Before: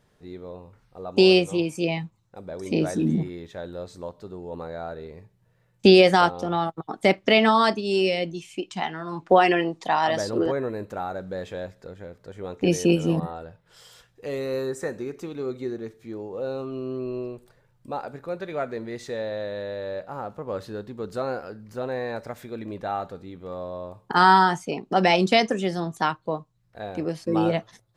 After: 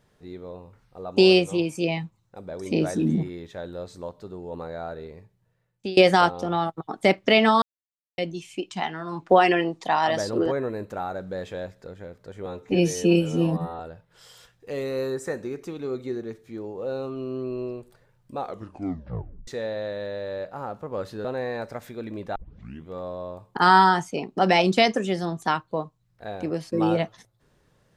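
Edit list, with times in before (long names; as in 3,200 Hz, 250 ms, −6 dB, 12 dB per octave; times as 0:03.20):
0:05.04–0:05.97: fade out, to −24 dB
0:07.62–0:08.18: silence
0:12.46–0:13.35: time-stretch 1.5×
0:17.92: tape stop 1.11 s
0:20.80–0:21.79: remove
0:22.90: tape start 0.52 s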